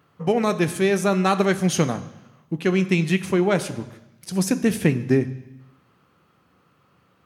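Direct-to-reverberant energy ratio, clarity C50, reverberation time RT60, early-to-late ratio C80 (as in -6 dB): 11.5 dB, 16.0 dB, 1.0 s, 17.5 dB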